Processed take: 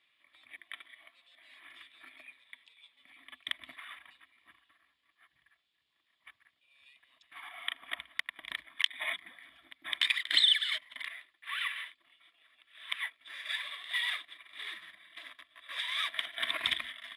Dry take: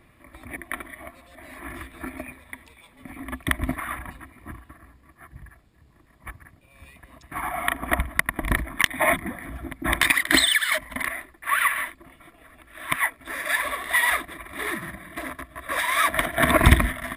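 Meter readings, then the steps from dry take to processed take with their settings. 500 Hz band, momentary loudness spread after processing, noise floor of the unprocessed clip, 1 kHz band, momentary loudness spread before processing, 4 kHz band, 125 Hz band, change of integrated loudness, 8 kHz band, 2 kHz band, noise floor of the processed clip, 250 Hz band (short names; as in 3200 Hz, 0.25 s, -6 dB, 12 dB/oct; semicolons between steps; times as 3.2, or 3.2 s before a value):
-26.5 dB, 22 LU, -57 dBFS, -21.0 dB, 21 LU, -2.0 dB, under -40 dB, -9.5 dB, -21.0 dB, -13.0 dB, -78 dBFS, under -30 dB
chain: band-pass 3300 Hz, Q 4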